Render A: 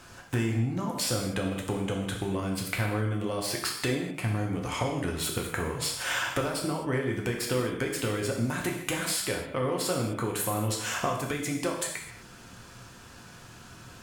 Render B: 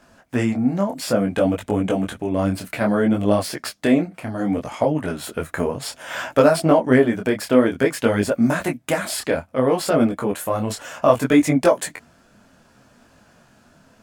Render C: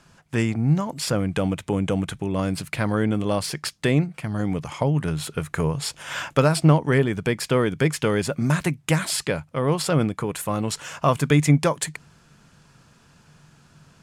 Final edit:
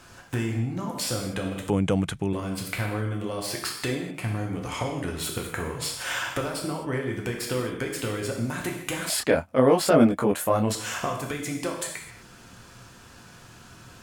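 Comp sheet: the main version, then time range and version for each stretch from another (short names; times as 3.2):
A
1.7–2.33 from C
9.1–10.75 from B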